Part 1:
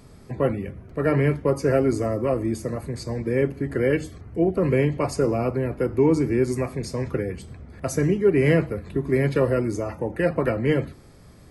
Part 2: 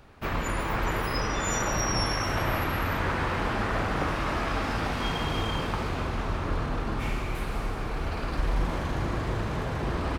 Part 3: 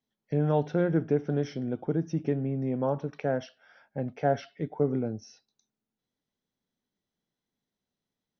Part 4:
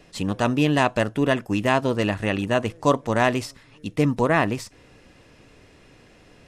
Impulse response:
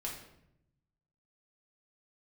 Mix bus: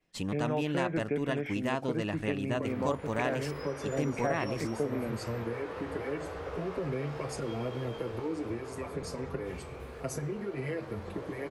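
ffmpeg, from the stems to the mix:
-filter_complex "[0:a]acompressor=threshold=-25dB:ratio=6,asplit=2[a][b];[b]adelay=6.1,afreqshift=-0.35[c];[a][c]amix=inputs=2:normalize=1,adelay=2200,volume=-2.5dB[d];[1:a]highpass=f=450:t=q:w=4.9,flanger=delay=15.5:depth=6.5:speed=0.21,adelay=2450,volume=-12.5dB[e];[2:a]highpass=150,lowpass=f=2.3k:t=q:w=6,volume=-1dB[f];[3:a]agate=range=-33dB:threshold=-41dB:ratio=3:detection=peak,volume=-7dB[g];[d][e][f][g]amix=inputs=4:normalize=0,acompressor=threshold=-31dB:ratio=2"

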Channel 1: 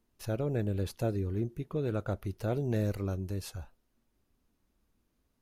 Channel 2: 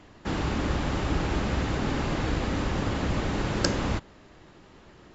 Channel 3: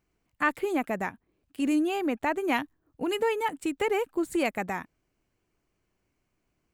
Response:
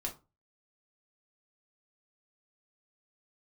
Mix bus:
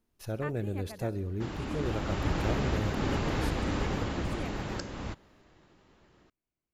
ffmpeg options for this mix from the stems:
-filter_complex "[0:a]volume=-2dB,asplit=2[a][b];[b]volume=-17.5dB[c];[1:a]dynaudnorm=f=430:g=5:m=10.5dB,adelay=1150,volume=-10.5dB[d];[2:a]volume=-16dB[e];[c]aecho=0:1:65|130|195|260|325|390|455|520|585|650:1|0.6|0.36|0.216|0.13|0.0778|0.0467|0.028|0.0168|0.0101[f];[a][d][e][f]amix=inputs=4:normalize=0,alimiter=limit=-19dB:level=0:latency=1:release=408"

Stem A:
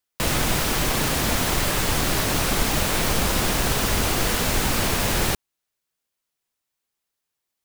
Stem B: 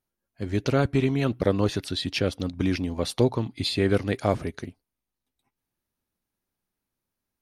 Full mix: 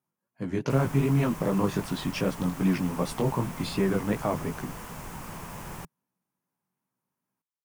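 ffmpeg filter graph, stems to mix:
-filter_complex "[0:a]adelay=500,volume=-20dB[a];[1:a]highpass=f=120:w=0.5412,highpass=f=120:w=1.3066,alimiter=limit=-15.5dB:level=0:latency=1,flanger=delay=15:depth=6.8:speed=2.6,volume=0.5dB[b];[a][b]amix=inputs=2:normalize=0,equalizer=f=160:t=o:w=0.67:g=10,equalizer=f=1k:t=o:w=0.67:g=9,equalizer=f=4k:t=o:w=0.67:g=-9"

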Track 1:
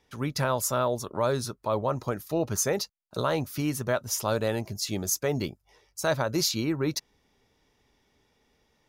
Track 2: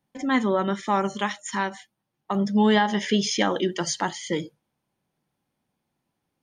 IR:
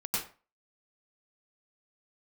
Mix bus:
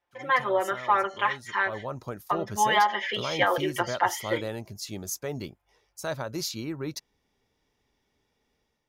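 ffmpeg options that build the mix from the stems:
-filter_complex "[0:a]dynaudnorm=f=110:g=5:m=6dB,volume=-12dB,afade=t=in:st=1.46:d=0.52:silence=0.334965[a];[1:a]highpass=f=260:w=0.5412,highpass=f=260:w=1.3066,acrossover=split=490 3000:gain=0.0891 1 0.0708[b][c][d];[b][c][d]amix=inputs=3:normalize=0,aecho=1:1:5.7:0.95,volume=1dB[e];[a][e]amix=inputs=2:normalize=0"

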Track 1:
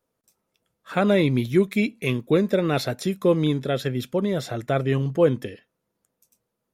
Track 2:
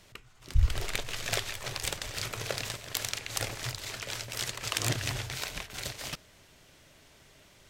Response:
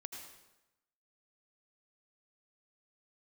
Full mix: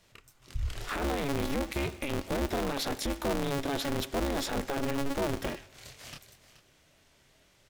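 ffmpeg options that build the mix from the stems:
-filter_complex "[0:a]acompressor=threshold=-22dB:ratio=6,aeval=exprs='val(0)*sgn(sin(2*PI*140*n/s))':c=same,volume=1.5dB,asplit=3[a][b][c];[b]volume=-16dB[d];[1:a]flanger=delay=22.5:depth=7.7:speed=2,volume=-3dB,asplit=2[e][f];[f]volume=-15.5dB[g];[c]apad=whole_len=339395[h];[e][h]sidechaincompress=threshold=-41dB:ratio=4:attack=16:release=588[i];[2:a]atrim=start_sample=2205[j];[d][j]afir=irnorm=-1:irlink=0[k];[g]aecho=0:1:427:1[l];[a][i][k][l]amix=inputs=4:normalize=0,alimiter=limit=-23dB:level=0:latency=1:release=25"

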